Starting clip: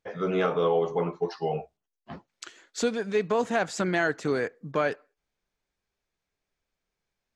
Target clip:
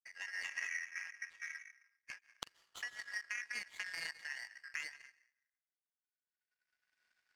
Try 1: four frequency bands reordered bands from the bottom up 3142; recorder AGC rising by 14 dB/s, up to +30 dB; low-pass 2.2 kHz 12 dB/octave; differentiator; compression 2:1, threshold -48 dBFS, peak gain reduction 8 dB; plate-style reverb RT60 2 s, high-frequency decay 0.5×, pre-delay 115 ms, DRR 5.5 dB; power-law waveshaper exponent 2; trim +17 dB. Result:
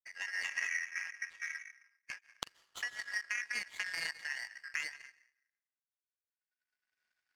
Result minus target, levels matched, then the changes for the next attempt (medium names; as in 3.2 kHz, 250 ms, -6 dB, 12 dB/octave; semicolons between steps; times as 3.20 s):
compression: peak gain reduction -4.5 dB
change: compression 2:1, threshold -57.5 dBFS, peak gain reduction 13 dB